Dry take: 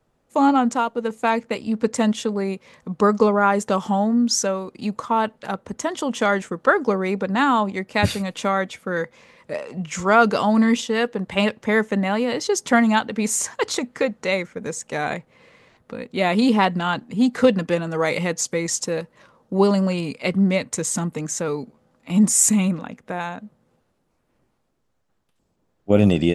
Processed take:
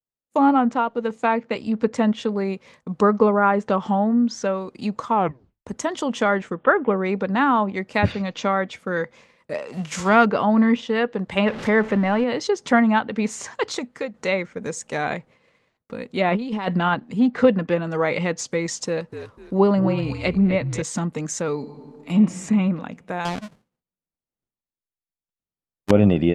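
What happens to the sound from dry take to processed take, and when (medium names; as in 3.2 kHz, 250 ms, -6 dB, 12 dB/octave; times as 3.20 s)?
1.16–1.56 s: band-pass 110–7800 Hz
5.14 s: tape stop 0.52 s
6.54–7.04 s: careless resampling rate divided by 6×, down none, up filtered
8.12–8.66 s: steep low-pass 6.7 kHz 48 dB/octave
9.72–10.24 s: formants flattened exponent 0.6
11.46–12.24 s: jump at every zero crossing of -27 dBFS
13.48–14.14 s: fade out, to -9.5 dB
16.28–16.95 s: compressor with a negative ratio -21 dBFS, ratio -0.5
18.87–20.82 s: frequency-shifting echo 248 ms, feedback 32%, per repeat -63 Hz, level -10 dB
21.54–22.16 s: reverb throw, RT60 2.3 s, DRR 5 dB
23.25–25.91 s: square wave that keeps the level
whole clip: low-pass that closes with the level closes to 2.3 kHz, closed at -16 dBFS; expander -43 dBFS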